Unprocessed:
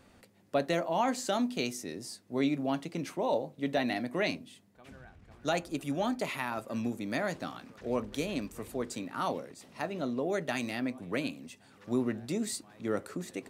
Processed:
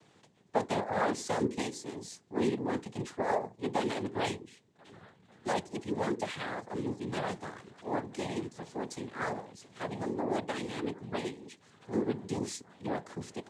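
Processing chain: noise-vocoded speech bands 6; dynamic bell 3.4 kHz, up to -4 dB, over -53 dBFS, Q 1.1; trim -1 dB

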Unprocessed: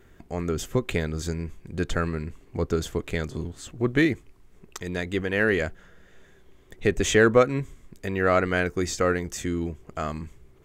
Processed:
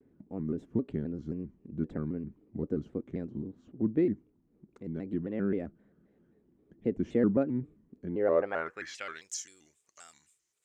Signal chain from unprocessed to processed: band-pass sweep 240 Hz -> 7.3 kHz, 8.06–9.40 s; vibrato with a chosen wave square 3.8 Hz, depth 160 cents

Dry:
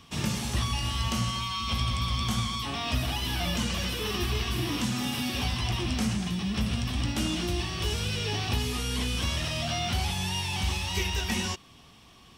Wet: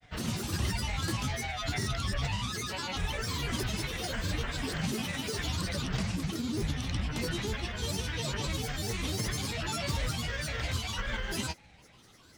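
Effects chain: granulator, grains 20 per s, pitch spread up and down by 12 st; trim -2.5 dB

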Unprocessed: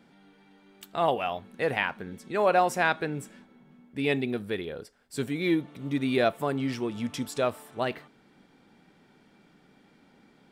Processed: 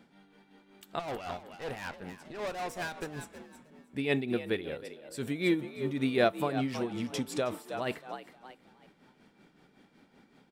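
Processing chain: 0.99–3.24 s: valve stage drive 32 dB, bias 0.75; frequency-shifting echo 317 ms, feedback 33%, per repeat +64 Hz, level -11 dB; tremolo 5.3 Hz, depth 58%

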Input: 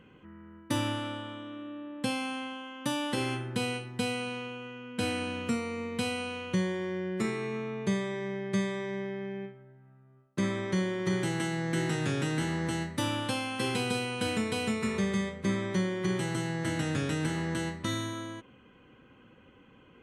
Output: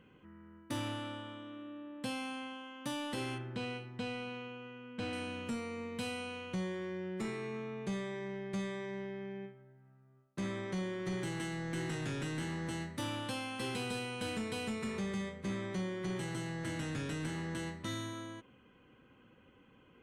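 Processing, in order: saturation -25.5 dBFS, distortion -15 dB; 3.38–5.13 s: distance through air 110 m; trim -5.5 dB

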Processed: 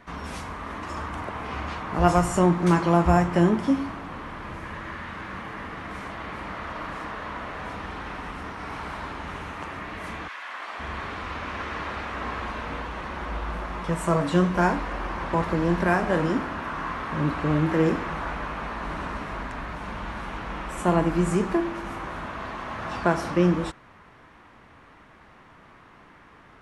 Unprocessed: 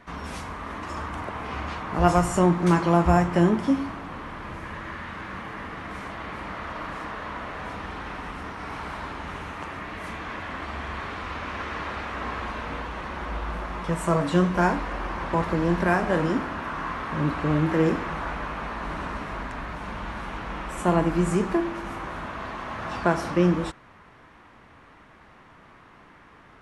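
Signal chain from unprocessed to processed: 10.27–10.79 s: high-pass 1.4 kHz -> 500 Hz 12 dB/octave

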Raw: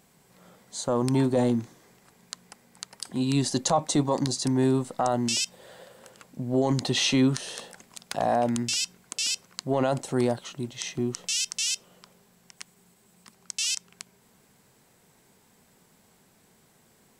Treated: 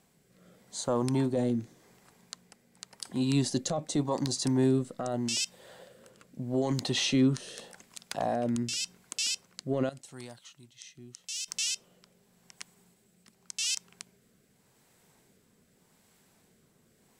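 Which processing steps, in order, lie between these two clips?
rotary cabinet horn 0.85 Hz; hard clipper -14.5 dBFS, distortion -39 dB; 9.89–11.48 s: amplifier tone stack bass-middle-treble 5-5-5; trim -2 dB

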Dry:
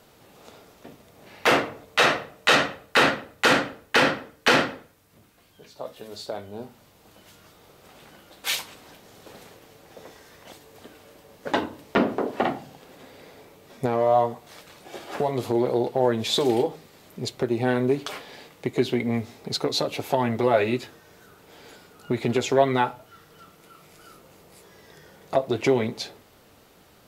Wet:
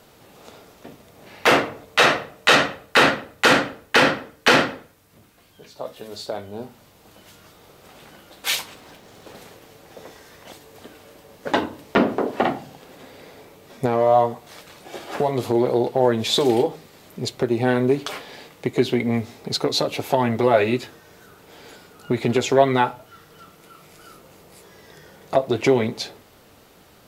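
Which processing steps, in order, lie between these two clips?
8.61–9.35 s: hysteresis with a dead band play -57 dBFS; 11.59–12.34 s: short-mantissa float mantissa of 8-bit; trim +3.5 dB

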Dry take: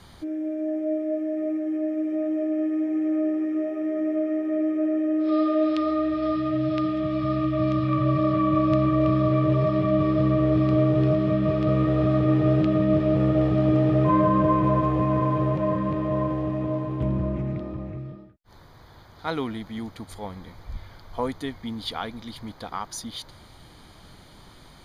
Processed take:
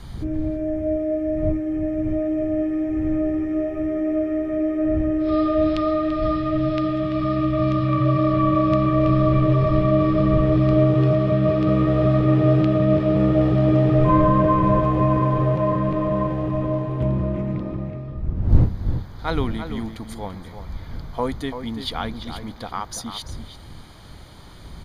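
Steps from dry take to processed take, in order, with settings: wind noise 94 Hz -33 dBFS; echo from a far wall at 58 m, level -9 dB; trim +3 dB

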